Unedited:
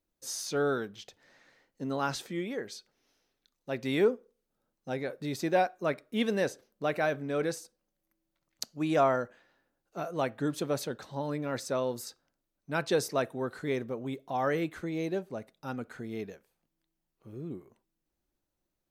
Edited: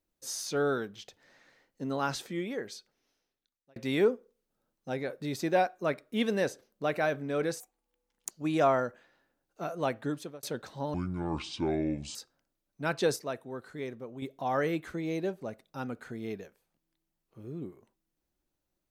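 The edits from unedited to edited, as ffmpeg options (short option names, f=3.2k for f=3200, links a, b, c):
-filter_complex "[0:a]asplit=9[a][b][c][d][e][f][g][h][i];[a]atrim=end=3.76,asetpts=PTS-STARTPTS,afade=t=out:st=2.67:d=1.09[j];[b]atrim=start=3.76:end=7.604,asetpts=PTS-STARTPTS,afade=t=in:d=0.004:c=hsin[k];[c]atrim=start=7.6:end=8.67,asetpts=PTS-STARTPTS,asetrate=66591,aresample=44100[l];[d]atrim=start=8.666:end=10.79,asetpts=PTS-STARTPTS,afade=t=out:st=1.694:d=0.43[m];[e]atrim=start=10.79:end=11.304,asetpts=PTS-STARTPTS,afade=t=in:d=0.004:c=hsin[n];[f]atrim=start=11.3:end=12.04,asetpts=PTS-STARTPTS,asetrate=26901,aresample=44100,atrim=end_sample=53498,asetpts=PTS-STARTPTS[o];[g]atrim=start=12.036:end=13.052[p];[h]atrim=start=13.048:end=14.112,asetpts=PTS-STARTPTS,volume=-6.5dB[q];[i]atrim=start=14.108[r];[j][k]concat=n=2:v=0:a=1[s];[s][l]acrossfade=d=0.004:c1=hsin:c2=hsin[t];[m][n]concat=n=2:v=0:a=1[u];[t][u]acrossfade=d=0.004:c1=hsin:c2=hsin[v];[v][o]acrossfade=d=0.004:c1=hsin:c2=hsin[w];[w][p]acrossfade=d=0.004:c1=hsin:c2=hsin[x];[x][q]acrossfade=d=0.004:c1=hsin:c2=hsin[y];[y][r]acrossfade=d=0.004:c1=hsin:c2=hsin"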